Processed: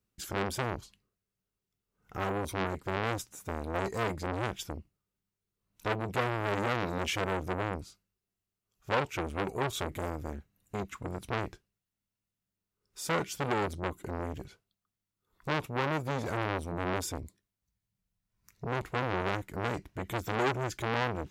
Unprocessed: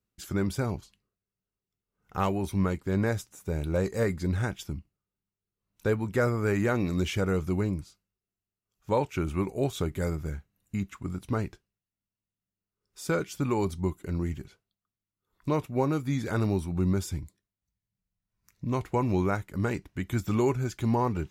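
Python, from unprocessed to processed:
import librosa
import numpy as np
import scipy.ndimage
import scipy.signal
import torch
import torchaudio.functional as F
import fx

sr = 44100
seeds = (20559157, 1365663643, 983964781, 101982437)

y = fx.transformer_sat(x, sr, knee_hz=1900.0)
y = y * librosa.db_to_amplitude(2.0)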